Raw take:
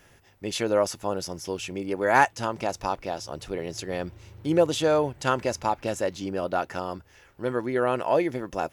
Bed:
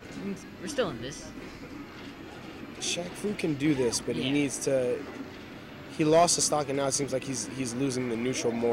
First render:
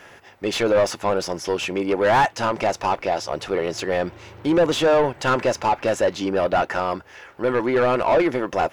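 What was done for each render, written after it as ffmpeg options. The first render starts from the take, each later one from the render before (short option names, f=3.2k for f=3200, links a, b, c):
-filter_complex "[0:a]asoftclip=type=tanh:threshold=-9dB,asplit=2[a][b];[b]highpass=f=720:p=1,volume=23dB,asoftclip=type=tanh:threshold=-9dB[c];[a][c]amix=inputs=2:normalize=0,lowpass=f=1.7k:p=1,volume=-6dB"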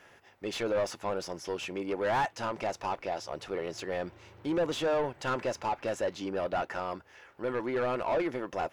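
-af "volume=-11.5dB"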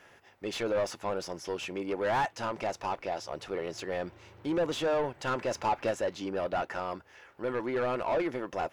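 -filter_complex "[0:a]asplit=3[a][b][c];[a]atrim=end=5.512[d];[b]atrim=start=5.508:end=5.912,asetpts=PTS-STARTPTS,volume=3dB[e];[c]atrim=start=5.908[f];[d][e]acrossfade=d=0.004:c1=hsin:c2=hsin[g];[g][f]acrossfade=d=0.004:c1=hsin:c2=hsin"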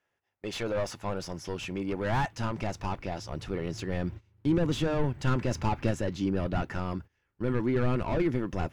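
-af "agate=range=-23dB:threshold=-47dB:ratio=16:detection=peak,asubboost=boost=9:cutoff=200"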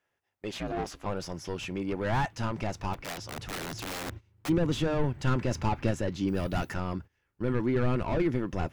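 -filter_complex "[0:a]asettb=1/sr,asplit=3[a][b][c];[a]atrim=end=0.514[d];[b]atrim=start=0.51:end=1.06,asetpts=PTS-STARTPTS,afade=t=in:d=0.004:c=qsin,afade=t=out:st=0.546:d=0.004:c=qsin,aeval=exprs='val(0)*sin(2*PI*170*n/s)':c=same[e];[c]atrim=start=1.056[f];[d][e]acrossfade=d=0.004:c1=hsin:c2=qsin[g];[g][f]acrossfade=d=0.004:c1=qsin:c2=hsin,asplit=3[h][i][j];[h]afade=t=out:st=2.93:d=0.02[k];[i]aeval=exprs='(mod(33.5*val(0)+1,2)-1)/33.5':c=same,afade=t=in:st=2.93:d=0.02,afade=t=out:st=4.48:d=0.02[l];[j]afade=t=in:st=4.48:d=0.02[m];[k][l][m]amix=inputs=3:normalize=0,asettb=1/sr,asplit=3[n][o][p];[n]atrim=end=6.284[q];[o]atrim=start=6.28:end=6.74,asetpts=PTS-STARTPTS,afade=t=in:d=0.004:c=qsin,afade=t=out:st=0.456:d=0.004:c=qsin,aemphasis=mode=production:type=75fm[r];[p]atrim=start=6.736[s];[q][r]acrossfade=d=0.004:c1=hsin:c2=qsin[t];[t][s]acrossfade=d=0.004:c1=qsin:c2=hsin"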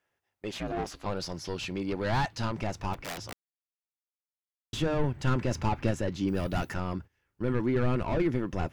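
-filter_complex "[0:a]asettb=1/sr,asplit=3[a][b][c];[a]atrim=end=0.944[d];[b]atrim=start=0.94:end=2.52,asetpts=PTS-STARTPTS,afade=t=in:d=0.004:c=qsin,afade=t=out:st=1.576:d=0.004:c=qsin,equalizer=f=4.3k:w=2.9:g=9.5[e];[c]atrim=start=2.516[f];[d][e]acrossfade=d=0.004:c1=hsin:c2=qsin[g];[g][f]acrossfade=d=0.004:c1=qsin:c2=hsin,asplit=3[h][i][j];[h]atrim=end=3.33,asetpts=PTS-STARTPTS,afade=t=out:st=3.326:d=0.004:c=hsin[k];[i]atrim=start=3.33:end=4.73,asetpts=PTS-STARTPTS,volume=0[l];[j]atrim=start=4.73,asetpts=PTS-STARTPTS,afade=t=in:d=0.004:c=hsin[m];[k][l][m]concat=n=3:v=0:a=1"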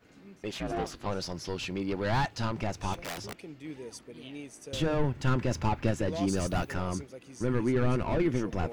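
-filter_complex "[1:a]volume=-16dB[a];[0:a][a]amix=inputs=2:normalize=0"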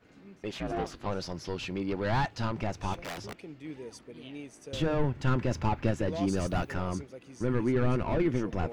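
-af "highshelf=f=5.8k:g=-8"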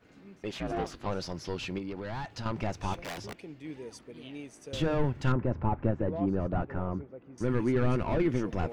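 -filter_complex "[0:a]asettb=1/sr,asplit=3[a][b][c];[a]atrim=end=1.784[d];[b]atrim=start=1.78:end=2.46,asetpts=PTS-STARTPTS,afade=t=in:d=0.004:c=qsin,afade=t=out:st=0.676:d=0.004:c=qsin,acompressor=threshold=-34dB:ratio=4:attack=3.2:release=140:knee=1:detection=peak[e];[c]atrim=start=2.456[f];[d][e]acrossfade=d=0.004:c1=hsin:c2=qsin[g];[g][f]acrossfade=d=0.004:c1=qsin:c2=hsin,asettb=1/sr,asplit=3[h][i][j];[h]atrim=end=3.014[k];[i]atrim=start=3.01:end=3.76,asetpts=PTS-STARTPTS,afade=t=in:d=0.004:c=qsin,afade=t=out:st=0.746:d=0.004:c=qsin,bandreject=f=1.3k:w=12[l];[j]atrim=start=3.756[m];[k][l]acrossfade=d=0.004:c1=hsin:c2=qsin[n];[n][m]acrossfade=d=0.004:c1=qsin:c2=hsin,asettb=1/sr,asplit=3[o][p][q];[o]atrim=end=5.324[r];[p]atrim=start=5.32:end=7.38,asetpts=PTS-STARTPTS,afade=t=in:d=0.004:c=qsin,afade=t=out:st=2.056:d=0.004:c=qsin,lowpass=1.2k[s];[q]atrim=start=7.376[t];[r][s]acrossfade=d=0.004:c1=hsin:c2=qsin[u];[u][t]acrossfade=d=0.004:c1=qsin:c2=hsin"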